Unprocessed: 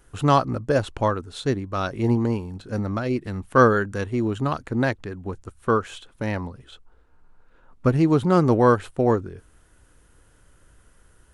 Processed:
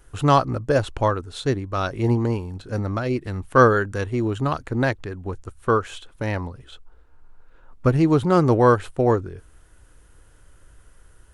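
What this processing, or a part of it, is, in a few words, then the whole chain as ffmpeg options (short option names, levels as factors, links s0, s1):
low shelf boost with a cut just above: -af "lowshelf=f=64:g=5.5,equalizer=f=210:t=o:w=0.56:g=-5,volume=1.19"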